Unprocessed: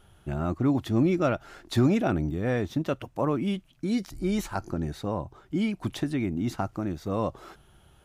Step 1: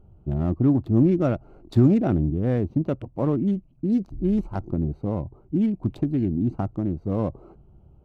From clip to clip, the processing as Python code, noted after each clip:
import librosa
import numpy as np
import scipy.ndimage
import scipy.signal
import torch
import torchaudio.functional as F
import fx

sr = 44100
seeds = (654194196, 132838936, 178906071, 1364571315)

y = fx.wiener(x, sr, points=25)
y = fx.tilt_shelf(y, sr, db=7.0, hz=650.0)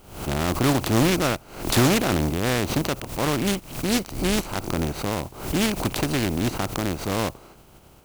y = fx.spec_flatten(x, sr, power=0.4)
y = 10.0 ** (-8.5 / 20.0) * np.tanh(y / 10.0 ** (-8.5 / 20.0))
y = fx.pre_swell(y, sr, db_per_s=100.0)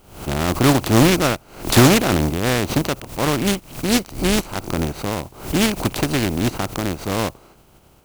y = fx.upward_expand(x, sr, threshold_db=-32.0, expansion=1.5)
y = F.gain(torch.from_numpy(y), 7.5).numpy()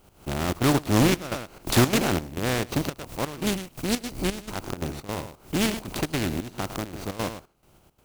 y = x + 10.0 ** (-10.5 / 20.0) * np.pad(x, (int(107 * sr / 1000.0), 0))[:len(x)]
y = fx.step_gate(y, sr, bpm=171, pattern='x..xxx.xx.xx', floor_db=-12.0, edge_ms=4.5)
y = fx.record_warp(y, sr, rpm=45.0, depth_cents=100.0)
y = F.gain(torch.from_numpy(y), -6.5).numpy()